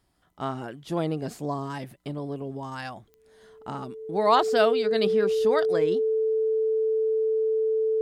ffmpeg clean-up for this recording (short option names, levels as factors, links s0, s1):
-af "adeclick=t=4,bandreject=f=440:w=30"